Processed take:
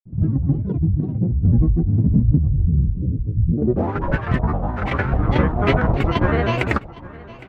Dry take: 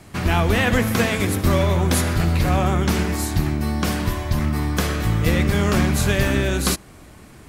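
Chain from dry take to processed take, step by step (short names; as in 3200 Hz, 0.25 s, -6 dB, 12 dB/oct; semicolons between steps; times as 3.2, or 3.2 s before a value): tremolo saw down 4.7 Hz, depth 65%; low-pass sweep 130 Hz -> 1200 Hz, 3.5–4.1; grains, pitch spread up and down by 12 st; spectral delete 2.53–3.57, 600–2200 Hz; on a send: feedback echo 0.811 s, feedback 21%, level -20 dB; on the sum: gain +4.5 dB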